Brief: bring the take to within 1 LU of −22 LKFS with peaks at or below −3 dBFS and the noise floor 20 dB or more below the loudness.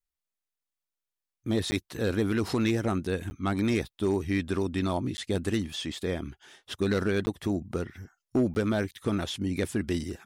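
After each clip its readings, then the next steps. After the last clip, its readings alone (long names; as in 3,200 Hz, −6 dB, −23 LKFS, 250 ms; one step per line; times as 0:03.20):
share of clipped samples 0.4%; peaks flattened at −18.0 dBFS; number of dropouts 5; longest dropout 10 ms; integrated loudness −29.5 LKFS; sample peak −18.0 dBFS; target loudness −22.0 LKFS
→ clipped peaks rebuilt −18 dBFS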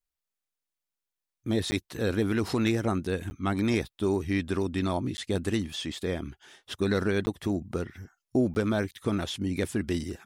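share of clipped samples 0.0%; number of dropouts 5; longest dropout 10 ms
→ repair the gap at 0:01.71/0:03.30/0:05.17/0:07.26/0:08.54, 10 ms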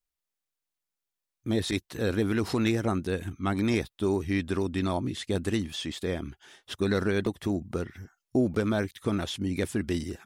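number of dropouts 0; integrated loudness −29.5 LKFS; sample peak −12.0 dBFS; target loudness −22.0 LKFS
→ level +7.5 dB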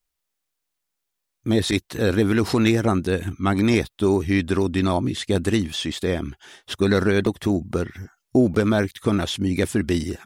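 integrated loudness −22.0 LKFS; sample peak −4.5 dBFS; background noise floor −80 dBFS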